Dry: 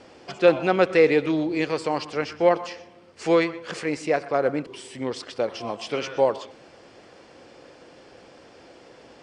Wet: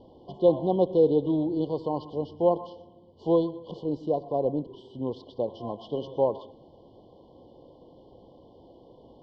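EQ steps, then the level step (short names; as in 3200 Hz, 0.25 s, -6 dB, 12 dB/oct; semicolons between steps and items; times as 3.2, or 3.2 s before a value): brick-wall FIR band-stop 1100–2900 Hz; LPF 4000 Hz 24 dB/oct; tilt -2.5 dB/oct; -6.0 dB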